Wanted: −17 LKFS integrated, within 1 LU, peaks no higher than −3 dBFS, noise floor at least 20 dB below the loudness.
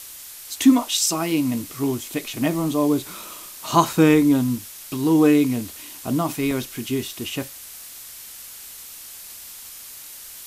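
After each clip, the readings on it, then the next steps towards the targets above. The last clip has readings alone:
number of dropouts 3; longest dropout 1.6 ms; background noise floor −40 dBFS; target noise floor −41 dBFS; integrated loudness −21.0 LKFS; sample peak −2.5 dBFS; target loudness −17.0 LKFS
→ repair the gap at 0:02.54/0:03.93/0:06.51, 1.6 ms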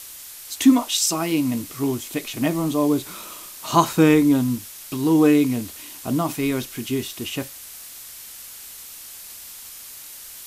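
number of dropouts 0; background noise floor −40 dBFS; target noise floor −41 dBFS
→ noise reduction from a noise print 6 dB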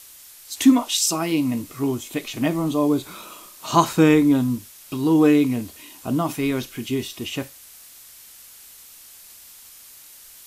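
background noise floor −46 dBFS; integrated loudness −21.0 LKFS; sample peak −2.5 dBFS; target loudness −17.0 LKFS
→ level +4 dB
brickwall limiter −3 dBFS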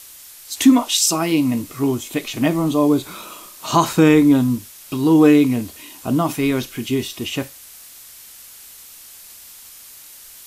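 integrated loudness −17.5 LKFS; sample peak −3.0 dBFS; background noise floor −42 dBFS

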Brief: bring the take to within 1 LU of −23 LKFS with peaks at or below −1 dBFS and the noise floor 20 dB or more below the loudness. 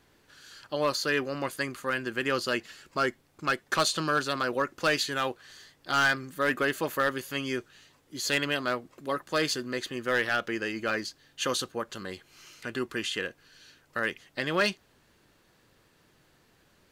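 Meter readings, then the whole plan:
share of clipped samples 0.3%; peaks flattened at −18.0 dBFS; integrated loudness −29.5 LKFS; sample peak −18.0 dBFS; target loudness −23.0 LKFS
→ clipped peaks rebuilt −18 dBFS
level +6.5 dB

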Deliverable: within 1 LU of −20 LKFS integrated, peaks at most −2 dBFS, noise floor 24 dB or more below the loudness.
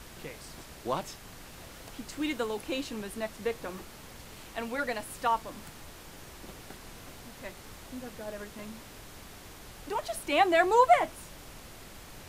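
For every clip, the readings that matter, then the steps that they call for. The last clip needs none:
background noise floor −49 dBFS; target noise floor −55 dBFS; integrated loudness −30.5 LKFS; sample peak −10.5 dBFS; target loudness −20.0 LKFS
→ noise reduction from a noise print 6 dB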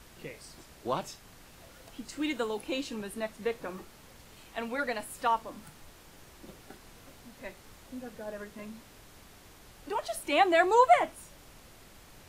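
background noise floor −55 dBFS; integrated loudness −30.0 LKFS; sample peak −10.5 dBFS; target loudness −20.0 LKFS
→ level +10 dB
brickwall limiter −2 dBFS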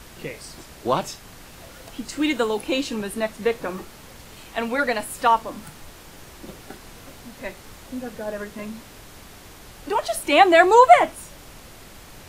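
integrated loudness −20.0 LKFS; sample peak −2.0 dBFS; background noise floor −45 dBFS

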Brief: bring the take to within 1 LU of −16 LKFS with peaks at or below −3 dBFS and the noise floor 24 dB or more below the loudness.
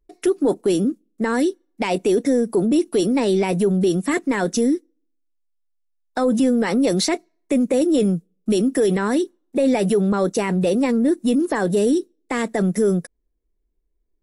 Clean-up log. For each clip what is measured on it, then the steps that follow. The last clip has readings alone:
integrated loudness −20.0 LKFS; sample peak −11.0 dBFS; target loudness −16.0 LKFS
→ level +4 dB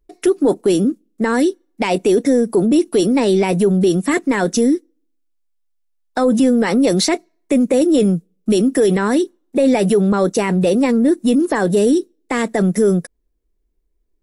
integrated loudness −16.0 LKFS; sample peak −7.0 dBFS; background noise floor −66 dBFS

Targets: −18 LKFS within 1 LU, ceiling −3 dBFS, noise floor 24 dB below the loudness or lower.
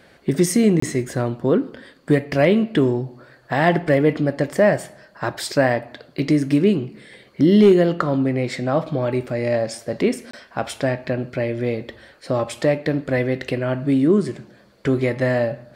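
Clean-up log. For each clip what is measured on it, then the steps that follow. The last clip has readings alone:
number of dropouts 2; longest dropout 24 ms; integrated loudness −20.0 LKFS; sample peak −5.5 dBFS; target loudness −18.0 LKFS
→ repair the gap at 0:00.80/0:10.31, 24 ms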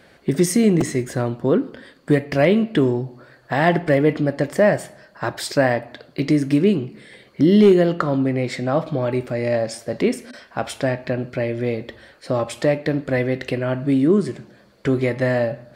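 number of dropouts 0; integrated loudness −20.0 LKFS; sample peak −5.5 dBFS; target loudness −18.0 LKFS
→ level +2 dB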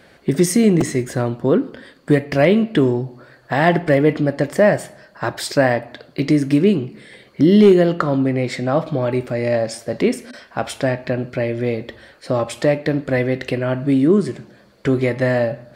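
integrated loudness −18.0 LKFS; sample peak −3.5 dBFS; background noise floor −50 dBFS

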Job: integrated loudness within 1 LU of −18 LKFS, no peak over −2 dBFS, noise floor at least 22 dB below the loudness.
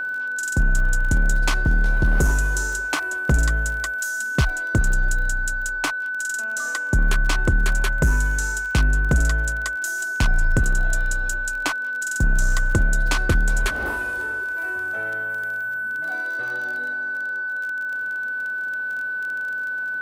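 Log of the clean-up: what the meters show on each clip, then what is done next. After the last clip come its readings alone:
crackle rate 27 per second; interfering tone 1,500 Hz; level of the tone −24 dBFS; integrated loudness −23.0 LKFS; sample peak −10.0 dBFS; target loudness −18.0 LKFS
→ click removal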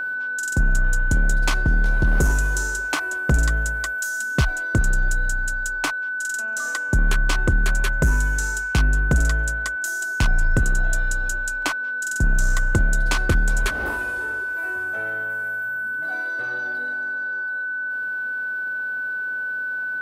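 crackle rate 0.45 per second; interfering tone 1,500 Hz; level of the tone −24 dBFS
→ notch filter 1,500 Hz, Q 30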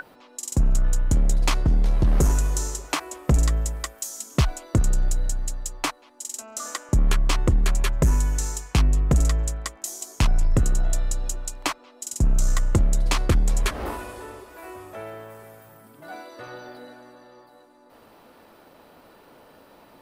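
interfering tone none found; integrated loudness −25.0 LKFS; sample peak −10.5 dBFS; target loudness −18.0 LKFS
→ level +7 dB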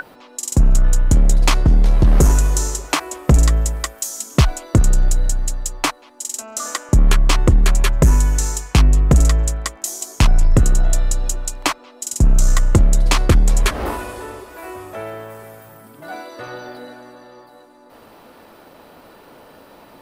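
integrated loudness −18.0 LKFS; sample peak −3.5 dBFS; background noise floor −46 dBFS

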